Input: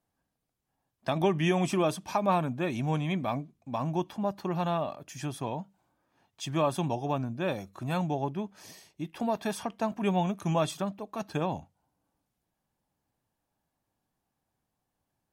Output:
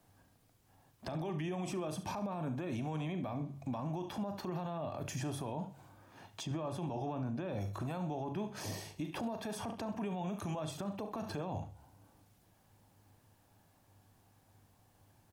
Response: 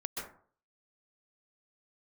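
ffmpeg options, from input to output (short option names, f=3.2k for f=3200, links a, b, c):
-filter_complex "[0:a]equalizer=f=100:w=6.6:g=13.5,bandreject=f=69.9:t=h:w=4,bandreject=f=139.8:t=h:w=4,acompressor=threshold=-41dB:ratio=6,aecho=1:1:39|70:0.237|0.158,acrossover=split=300|990[a][b][c];[a]acompressor=threshold=-49dB:ratio=4[d];[b]acompressor=threshold=-47dB:ratio=4[e];[c]acompressor=threshold=-59dB:ratio=4[f];[d][e][f]amix=inputs=3:normalize=0,asettb=1/sr,asplit=3[g][h][i];[g]atrim=end=6.434[j];[h]atrim=start=6.43:end=7.61,asetpts=PTS-STARTPTS,afade=t=in:d=0.004:c=qsin,afade=t=out:st=1.176:d=0.004:c=qsin,highshelf=f=6.5k:g=-9[k];[i]atrim=start=7.606[l];[j][k]acrossfade=d=0.004:c1=hsin:c2=qsin[m];[m][l]acrossfade=d=0.004:c1=qsin:c2=hsin,aecho=1:1:129|258:0.0708|0.0184,alimiter=level_in=19.5dB:limit=-24dB:level=0:latency=1:release=28,volume=-19.5dB,volume=13dB"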